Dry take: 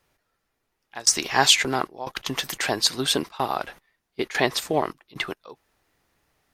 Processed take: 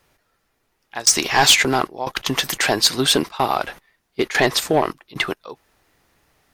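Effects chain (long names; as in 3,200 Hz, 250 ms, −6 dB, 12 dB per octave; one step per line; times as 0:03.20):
soft clipping −13.5 dBFS, distortion −12 dB
level +7.5 dB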